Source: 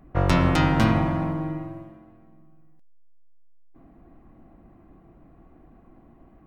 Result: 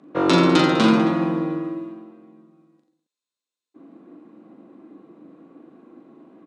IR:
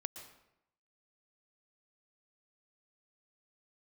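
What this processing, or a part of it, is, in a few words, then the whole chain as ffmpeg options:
television speaker: -af "highpass=frequency=200:width=0.5412,highpass=frequency=200:width=1.3066,equalizer=frequency=300:width_type=q:width=4:gain=6,equalizer=frequency=480:width_type=q:width=4:gain=6,equalizer=frequency=720:width_type=q:width=4:gain=-8,equalizer=frequency=1900:width_type=q:width=4:gain=-5,equalizer=frequency=3800:width_type=q:width=4:gain=7,lowpass=frequency=8900:width=0.5412,lowpass=frequency=8900:width=1.3066,aecho=1:1:40|86|138.9|199.7|269.7:0.631|0.398|0.251|0.158|0.1,volume=3.5dB"

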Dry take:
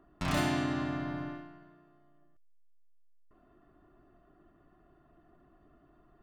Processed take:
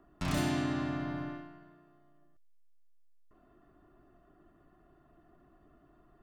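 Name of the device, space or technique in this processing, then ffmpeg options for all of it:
one-band saturation: -filter_complex "[0:a]acrossover=split=450|4400[link_01][link_02][link_03];[link_02]asoftclip=type=tanh:threshold=-35dB[link_04];[link_01][link_04][link_03]amix=inputs=3:normalize=0"

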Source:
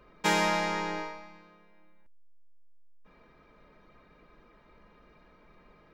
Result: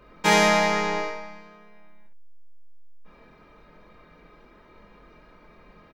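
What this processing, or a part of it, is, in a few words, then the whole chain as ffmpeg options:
slapback doubling: -filter_complex "[0:a]asplit=3[link_01][link_02][link_03];[link_02]adelay=24,volume=-3dB[link_04];[link_03]adelay=67,volume=-4.5dB[link_05];[link_01][link_04][link_05]amix=inputs=3:normalize=0,volume=4dB"

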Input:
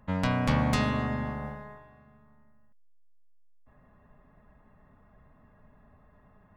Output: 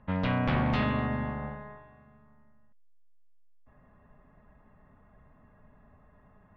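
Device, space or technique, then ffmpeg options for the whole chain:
synthesiser wavefolder: -af "aeval=exprs='0.1*(abs(mod(val(0)/0.1+3,4)-2)-1)':channel_layout=same,lowpass=frequency=3500:width=0.5412,lowpass=frequency=3500:width=1.3066"

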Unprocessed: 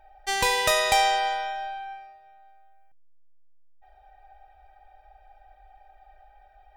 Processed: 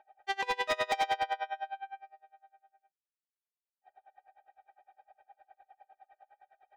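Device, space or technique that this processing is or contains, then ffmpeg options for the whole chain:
helicopter radio: -af "highpass=320,lowpass=2900,aeval=exprs='val(0)*pow(10,-28*(0.5-0.5*cos(2*PI*9.8*n/s))/20)':channel_layout=same,asoftclip=type=hard:threshold=-23.5dB"

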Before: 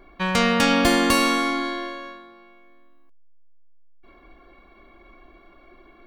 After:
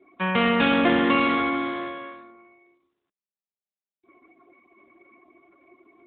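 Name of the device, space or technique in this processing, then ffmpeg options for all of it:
mobile call with aggressive noise cancelling: -af "highpass=frequency=160:width=0.5412,highpass=frequency=160:width=1.3066,afftdn=noise_reduction=22:noise_floor=-47" -ar 8000 -c:a libopencore_amrnb -b:a 12200

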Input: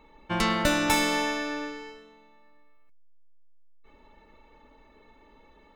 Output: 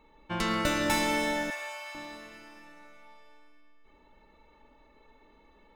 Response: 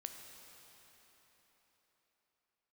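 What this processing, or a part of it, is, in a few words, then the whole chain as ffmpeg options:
cathedral: -filter_complex "[1:a]atrim=start_sample=2205[link_01];[0:a][link_01]afir=irnorm=-1:irlink=0,asettb=1/sr,asplit=3[link_02][link_03][link_04];[link_02]atrim=end=1.504[link_05];[link_03]atrim=start=1.5:end=1.95,asetpts=PTS-STARTPTS,afade=type=in:duration=0.004:curve=qsin,afade=type=out:start_time=0.446:duration=0.004:curve=qsin,highpass=frequency=690:width=0.5412,highpass=frequency=690:width=1.3066[link_06];[link_04]atrim=start=1.946[link_07];[link_05][link_06]acrossfade=duration=0.004:curve1=hsin:curve2=qsin[link_08];[link_08][link_07]acrossfade=duration=0.004:curve1=qsin:curve2=hsin"

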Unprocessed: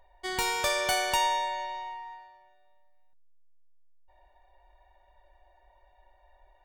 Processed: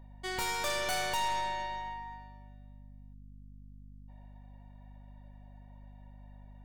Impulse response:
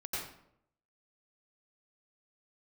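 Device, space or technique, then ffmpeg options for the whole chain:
valve amplifier with mains hum: -af "aeval=exprs='(tanh(28.2*val(0)+0.5)-tanh(0.5))/28.2':channel_layout=same,aeval=exprs='val(0)+0.00316*(sin(2*PI*50*n/s)+sin(2*PI*2*50*n/s)/2+sin(2*PI*3*50*n/s)/3+sin(2*PI*4*50*n/s)/4+sin(2*PI*5*50*n/s)/5)':channel_layout=same"

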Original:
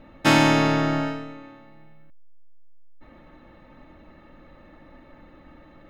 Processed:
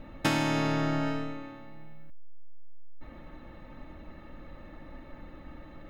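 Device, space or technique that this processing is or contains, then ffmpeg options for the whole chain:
ASMR close-microphone chain: -af "lowshelf=frequency=110:gain=7,acompressor=threshold=-24dB:ratio=10,highshelf=frequency=7800:gain=4.5"

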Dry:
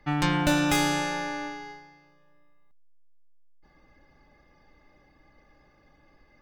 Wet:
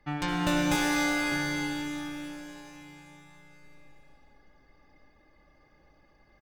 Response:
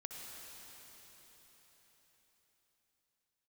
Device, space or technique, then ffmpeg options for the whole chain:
cave: -filter_complex "[0:a]aecho=1:1:245:0.316[link_01];[1:a]atrim=start_sample=2205[link_02];[link_01][link_02]afir=irnorm=-1:irlink=0,asettb=1/sr,asplit=3[link_03][link_04][link_05];[link_03]atrim=end=0.754[link_06];[link_04]atrim=start=0.75:end=1.32,asetpts=PTS-STARTPTS,afade=type=in:duration=0.004:curve=qsin,afade=type=out:start_time=0.566:duration=0.004:curve=qsin,equalizer=frequency=110:width=0.9:gain=-15[link_07];[link_05]atrim=start=1.316[link_08];[link_06][link_07]acrossfade=duration=0.004:curve1=hsin:curve2=qsin[link_09];[link_09][link_08]acrossfade=duration=0.004:curve1=qsin:curve2=hsin"

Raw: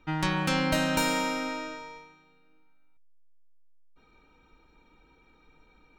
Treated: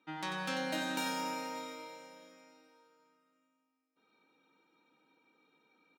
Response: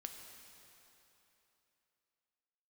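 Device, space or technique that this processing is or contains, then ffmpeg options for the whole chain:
PA in a hall: -filter_complex "[0:a]highpass=frequency=190:width=0.5412,highpass=frequency=190:width=1.3066,equalizer=frequency=3700:width_type=o:width=0.22:gain=4,aecho=1:1:92:0.422[link_01];[1:a]atrim=start_sample=2205[link_02];[link_01][link_02]afir=irnorm=-1:irlink=0,volume=-5.5dB"

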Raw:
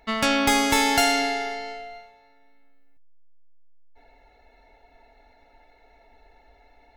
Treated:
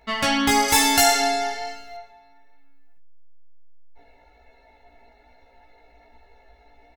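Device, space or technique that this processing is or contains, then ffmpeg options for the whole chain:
double-tracked vocal: -filter_complex "[0:a]asplit=2[link_01][link_02];[link_02]adelay=17,volume=-6dB[link_03];[link_01][link_03]amix=inputs=2:normalize=0,flanger=delay=15:depth=2.4:speed=1.1,asettb=1/sr,asplit=3[link_04][link_05][link_06];[link_04]atrim=end=0.684[link_07];[link_05]atrim=start=0.68:end=1.97,asetpts=PTS-STARTPTS,afade=type=in:duration=0.004:curve=qsin,afade=type=out:start_time=1.286:duration=0.004:curve=qsin,aemphasis=mode=production:type=cd[link_08];[link_06]atrim=start=1.966[link_09];[link_07][link_08]acrossfade=duration=0.004:curve1=hsin:curve2=qsin[link_10];[link_10][link_09]acrossfade=duration=0.004:curve1=qsin:curve2=hsin,volume=3.5dB"

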